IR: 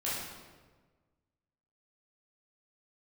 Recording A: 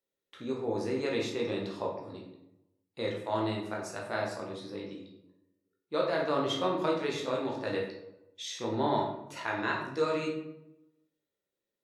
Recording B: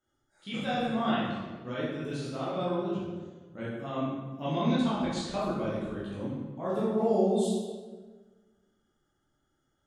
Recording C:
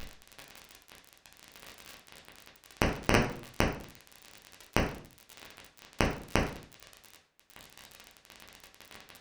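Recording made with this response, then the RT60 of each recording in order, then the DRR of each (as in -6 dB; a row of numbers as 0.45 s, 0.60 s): B; 0.85 s, 1.4 s, 0.50 s; -2.0 dB, -9.0 dB, -2.5 dB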